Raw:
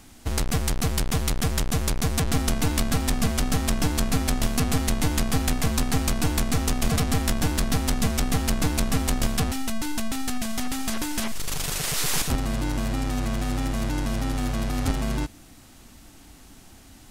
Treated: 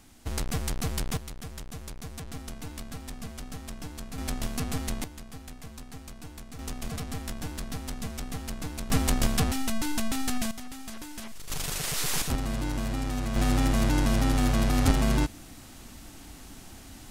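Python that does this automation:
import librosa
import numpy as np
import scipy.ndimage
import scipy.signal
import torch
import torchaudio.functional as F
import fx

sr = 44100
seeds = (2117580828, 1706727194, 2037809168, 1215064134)

y = fx.gain(x, sr, db=fx.steps((0.0, -6.0), (1.17, -16.0), (4.18, -8.0), (5.04, -20.0), (6.59, -12.0), (8.9, -1.0), (10.51, -12.5), (11.5, -4.0), (13.36, 2.5)))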